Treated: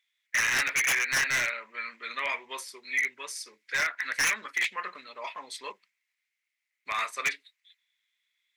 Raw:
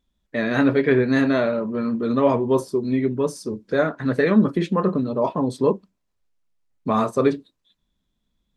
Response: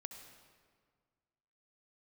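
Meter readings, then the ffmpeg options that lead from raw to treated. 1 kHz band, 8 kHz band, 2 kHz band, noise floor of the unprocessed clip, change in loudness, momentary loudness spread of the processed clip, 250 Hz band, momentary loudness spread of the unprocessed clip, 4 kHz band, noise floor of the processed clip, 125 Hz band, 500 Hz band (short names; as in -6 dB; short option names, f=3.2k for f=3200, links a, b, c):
-8.5 dB, +12.0 dB, +3.5 dB, -75 dBFS, -7.0 dB, 16 LU, -33.5 dB, 7 LU, +5.0 dB, -84 dBFS, under -25 dB, -25.0 dB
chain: -af "highpass=f=2.1k:t=q:w=7.8,aeval=exprs='0.106*(abs(mod(val(0)/0.106+3,4)-2)-1)':c=same"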